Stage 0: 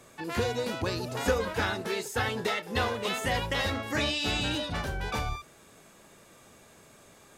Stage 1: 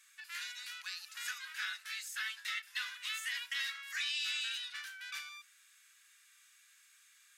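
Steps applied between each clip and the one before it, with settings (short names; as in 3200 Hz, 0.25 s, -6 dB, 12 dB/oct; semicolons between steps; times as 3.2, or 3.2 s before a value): steep high-pass 1500 Hz 36 dB/oct; gain -5 dB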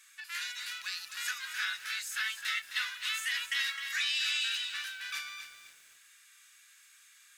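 lo-fi delay 0.26 s, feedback 35%, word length 10-bit, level -9 dB; gain +5 dB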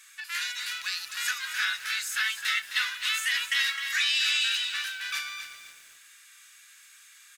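echo 0.374 s -21 dB; gain +6 dB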